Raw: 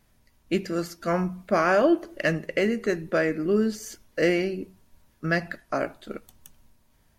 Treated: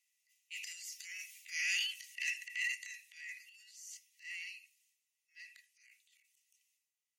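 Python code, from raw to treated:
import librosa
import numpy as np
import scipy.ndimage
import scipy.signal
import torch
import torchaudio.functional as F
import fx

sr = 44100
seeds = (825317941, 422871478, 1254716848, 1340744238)

y = fx.doppler_pass(x, sr, speed_mps=7, closest_m=2.6, pass_at_s=1.59)
y = scipy.signal.sosfilt(scipy.signal.cheby1(6, 9, 1900.0, 'highpass', fs=sr, output='sos'), y)
y = fx.transient(y, sr, attack_db=-8, sustain_db=11)
y = y * 10.0 ** (8.0 / 20.0)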